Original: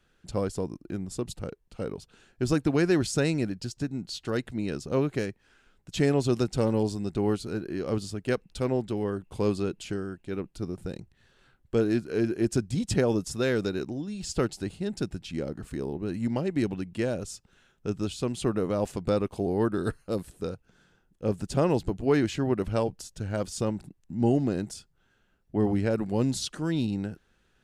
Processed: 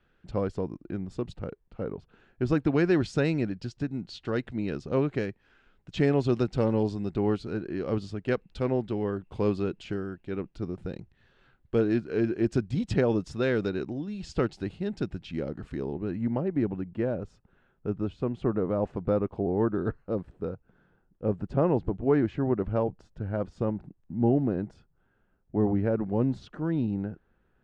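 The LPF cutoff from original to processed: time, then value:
1.3 s 2700 Hz
1.91 s 1600 Hz
2.77 s 3300 Hz
15.9 s 3300 Hz
16.37 s 1400 Hz

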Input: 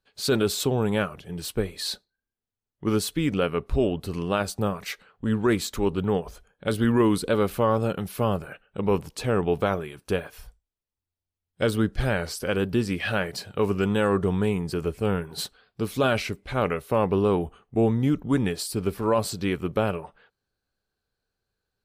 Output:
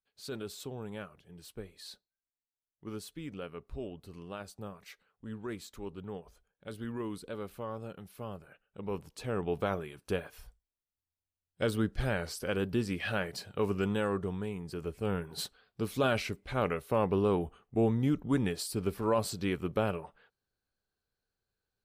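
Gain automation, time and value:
8.39 s -17.5 dB
9.77 s -7 dB
13.86 s -7 dB
14.5 s -13.5 dB
15.29 s -6 dB

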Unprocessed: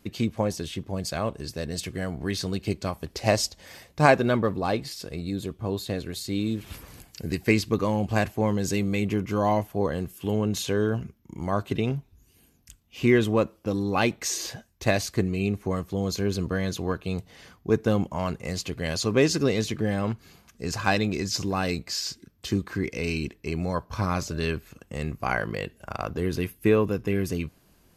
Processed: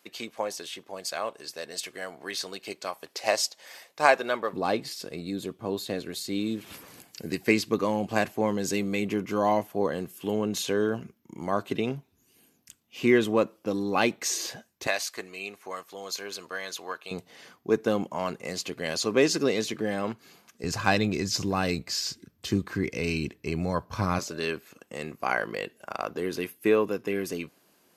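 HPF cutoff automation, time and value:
580 Hz
from 4.53 s 210 Hz
from 14.87 s 790 Hz
from 17.11 s 250 Hz
from 20.64 s 88 Hz
from 24.19 s 290 Hz

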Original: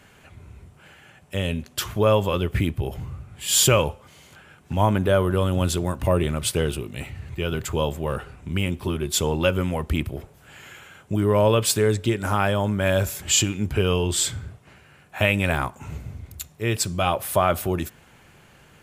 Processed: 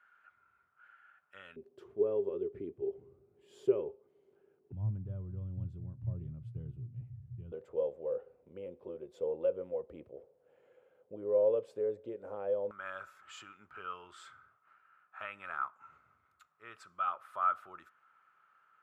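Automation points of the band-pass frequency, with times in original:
band-pass, Q 13
1400 Hz
from 1.56 s 400 Hz
from 4.72 s 120 Hz
from 7.52 s 500 Hz
from 12.71 s 1300 Hz

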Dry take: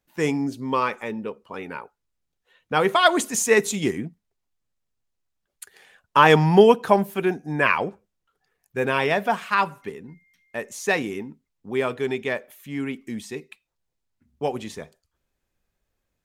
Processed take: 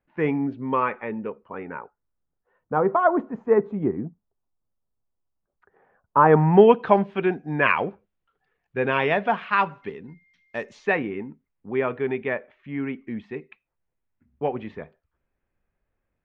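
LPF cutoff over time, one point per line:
LPF 24 dB/oct
1.23 s 2300 Hz
2.82 s 1200 Hz
6.18 s 1200 Hz
6.8 s 3200 Hz
9.67 s 3200 Hz
10.59 s 5800 Hz
10.95 s 2400 Hz

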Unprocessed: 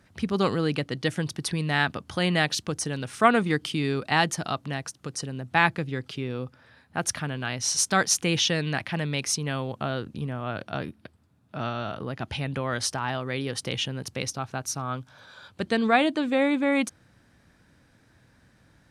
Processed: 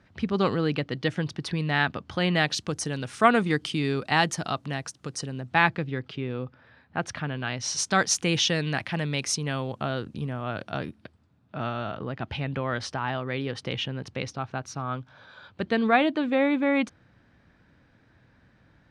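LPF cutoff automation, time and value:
2.27 s 4300 Hz
2.69 s 8800 Hz
5.22 s 8800 Hz
6 s 3300 Hz
7.15 s 3300 Hz
8.29 s 8800 Hz
10.87 s 8800 Hz
11.61 s 3500 Hz

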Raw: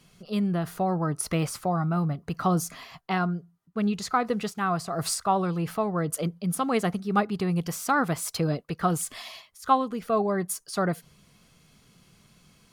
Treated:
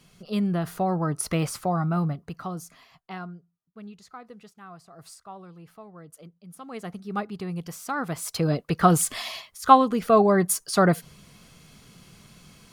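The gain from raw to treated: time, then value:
2.06 s +1 dB
2.52 s -10.5 dB
3.17 s -10.5 dB
4.06 s -18.5 dB
6.48 s -18.5 dB
7.04 s -6 dB
7.94 s -6 dB
8.76 s +7 dB

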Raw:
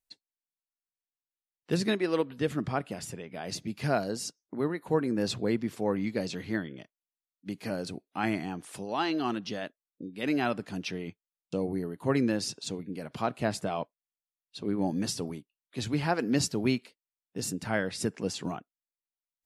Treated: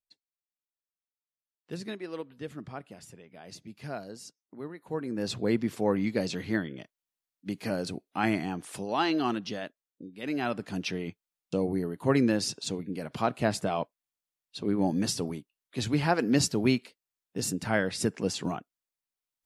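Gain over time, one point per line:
4.75 s -10 dB
5.56 s +2.5 dB
9.19 s +2.5 dB
10.22 s -5 dB
10.76 s +2.5 dB

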